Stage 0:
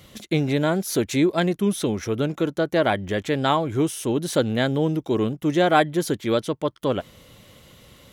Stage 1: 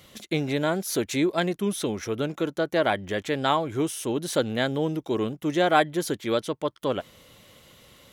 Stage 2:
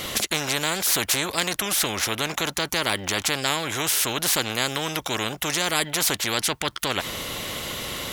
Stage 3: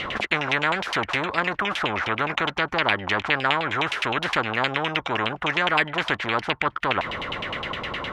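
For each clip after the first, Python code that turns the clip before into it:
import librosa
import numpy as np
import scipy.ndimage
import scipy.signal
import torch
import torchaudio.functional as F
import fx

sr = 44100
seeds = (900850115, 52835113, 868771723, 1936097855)

y1 = fx.low_shelf(x, sr, hz=270.0, db=-6.5)
y1 = y1 * librosa.db_to_amplitude(-1.5)
y2 = fx.spectral_comp(y1, sr, ratio=4.0)
y3 = fx.filter_lfo_lowpass(y2, sr, shape='saw_down', hz=9.7, low_hz=840.0, high_hz=3000.0, q=3.0)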